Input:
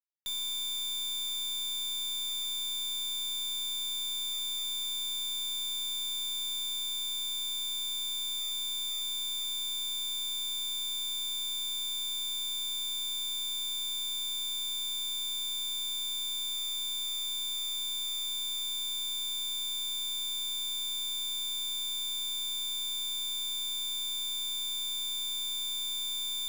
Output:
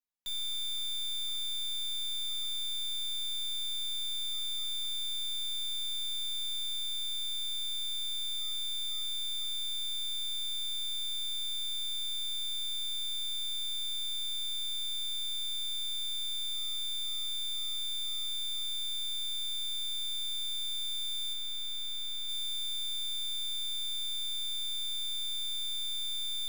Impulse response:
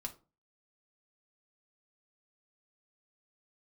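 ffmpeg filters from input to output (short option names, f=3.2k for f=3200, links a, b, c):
-filter_complex "[0:a]asettb=1/sr,asplit=3[a][b][c];[a]atrim=end=21.334[d];[b]atrim=start=21.33:end=22.29,asetpts=PTS-STARTPTS,afade=t=in:d=0.004:c=qsin,afade=t=out:st=0.956:d=0.004:c=qsin,equalizer=f=15k:t=o:w=2.3:g=-4[e];[c]atrim=start=22.286[f];[d][e]acrossfade=d=0.004:c1=hsin:c2=qsin[g];[g][f]acrossfade=d=0.004:c1=qsin:c2=hsin[h];[1:a]atrim=start_sample=2205[i];[h][i]afir=irnorm=-1:irlink=0"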